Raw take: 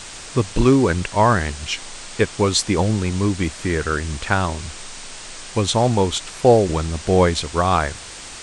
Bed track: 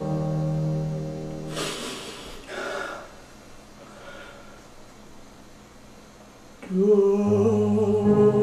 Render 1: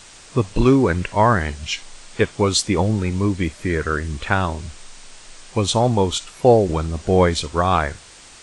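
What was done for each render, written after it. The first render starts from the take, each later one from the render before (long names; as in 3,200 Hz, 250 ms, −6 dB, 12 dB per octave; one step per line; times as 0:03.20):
noise reduction from a noise print 8 dB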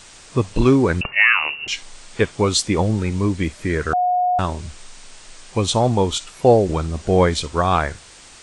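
0:01.01–0:01.68: voice inversion scrambler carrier 2,800 Hz
0:03.93–0:04.39: beep over 723 Hz −15 dBFS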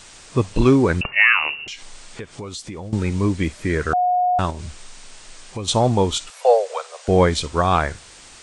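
0:01.59–0:02.93: downward compressor, threshold −30 dBFS
0:04.50–0:05.68: downward compressor 4 to 1, threshold −26 dBFS
0:06.30–0:07.08: Butterworth high-pass 460 Hz 96 dB per octave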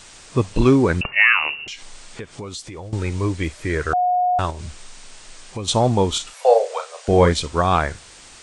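0:02.64–0:04.61: parametric band 210 Hz −10.5 dB 0.56 octaves
0:06.11–0:07.33: double-tracking delay 35 ms −8 dB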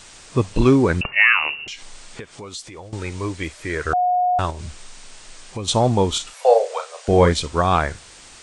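0:02.20–0:03.85: low-shelf EQ 340 Hz −7 dB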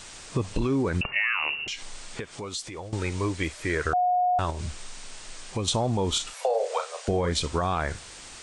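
brickwall limiter −13 dBFS, peak gain reduction 11 dB
downward compressor 4 to 1, threshold −22 dBFS, peak gain reduction 5.5 dB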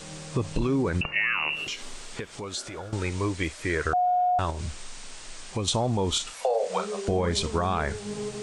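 mix in bed track −16.5 dB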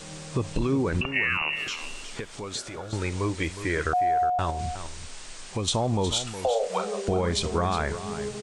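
single-tap delay 363 ms −11.5 dB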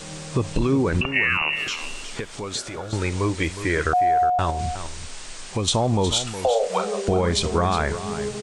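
level +4.5 dB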